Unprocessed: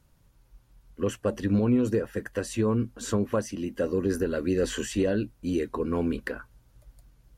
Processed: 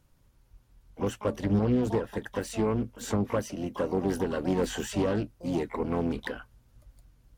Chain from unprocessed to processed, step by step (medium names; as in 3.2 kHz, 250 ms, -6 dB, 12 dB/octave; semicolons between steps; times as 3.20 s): harmony voices -12 st -11 dB, +12 st -11 dB; loudspeaker Doppler distortion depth 0.38 ms; trim -2.5 dB